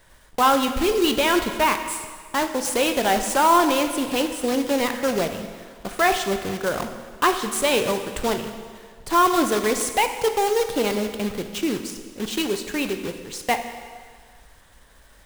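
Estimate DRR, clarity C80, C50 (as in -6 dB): 6.5 dB, 9.5 dB, 8.0 dB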